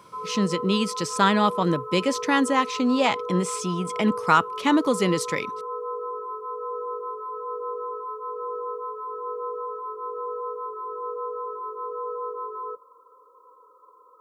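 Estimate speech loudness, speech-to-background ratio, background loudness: -23.5 LUFS, 9.0 dB, -32.5 LUFS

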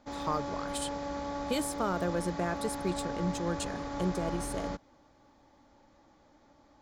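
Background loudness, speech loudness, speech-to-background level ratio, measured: -38.0 LUFS, -35.5 LUFS, 2.5 dB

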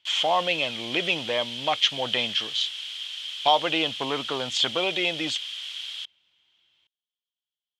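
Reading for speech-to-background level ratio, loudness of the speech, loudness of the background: 7.0 dB, -25.5 LUFS, -32.5 LUFS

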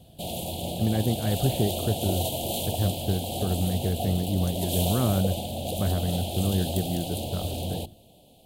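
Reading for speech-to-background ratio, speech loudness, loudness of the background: 2.5 dB, -28.5 LUFS, -31.0 LUFS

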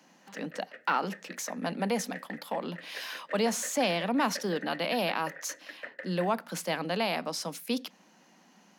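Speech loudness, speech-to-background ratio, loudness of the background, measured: -32.0 LUFS, 13.5 dB, -45.5 LUFS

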